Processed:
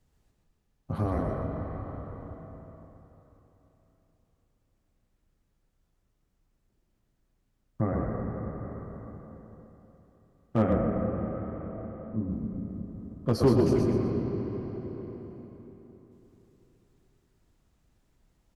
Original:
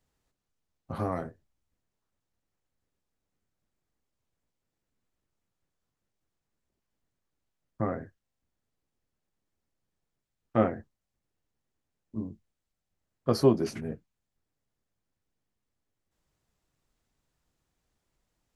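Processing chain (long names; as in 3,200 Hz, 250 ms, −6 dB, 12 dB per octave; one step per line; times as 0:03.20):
low-shelf EQ 300 Hz +9.5 dB
echo with shifted repeats 123 ms, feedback 35%, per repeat −30 Hz, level −4 dB
on a send at −3 dB: convolution reverb RT60 3.7 s, pre-delay 65 ms
on the sum: asymmetric clip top −12.5 dBFS
in parallel at +2 dB: downward compressor, threshold −36 dBFS, peak gain reduction 21 dB
0:10.73–0:12.31: on the sum: low-pass filter 2,300 Hz 12 dB per octave
level −5.5 dB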